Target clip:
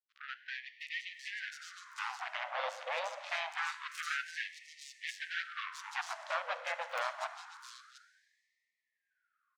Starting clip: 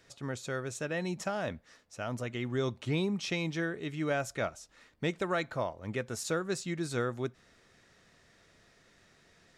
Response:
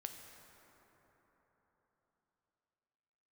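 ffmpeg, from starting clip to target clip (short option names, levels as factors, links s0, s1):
-filter_complex "[0:a]aemphasis=mode=reproduction:type=50fm,bandreject=f=50:t=h:w=6,bandreject=f=100:t=h:w=6,bandreject=f=150:t=h:w=6,bandreject=f=200:t=h:w=6,acompressor=threshold=0.00158:ratio=2,acrusher=bits=6:mix=0:aa=0.5,asplit=3[s0][s1][s2];[s1]asetrate=35002,aresample=44100,atempo=1.25992,volume=0.631[s3];[s2]asetrate=55563,aresample=44100,atempo=0.793701,volume=0.126[s4];[s0][s3][s4]amix=inputs=3:normalize=0,acrossover=split=4300[s5][s6];[s6]adelay=710[s7];[s5][s7]amix=inputs=2:normalize=0,asplit=2[s8][s9];[1:a]atrim=start_sample=2205,lowpass=9000[s10];[s9][s10]afir=irnorm=-1:irlink=0,volume=2.11[s11];[s8][s11]amix=inputs=2:normalize=0,afftfilt=real='re*gte(b*sr/1024,480*pow(1800/480,0.5+0.5*sin(2*PI*0.26*pts/sr)))':imag='im*gte(b*sr/1024,480*pow(1800/480,0.5+0.5*sin(2*PI*0.26*pts/sr)))':win_size=1024:overlap=0.75,volume=2.11"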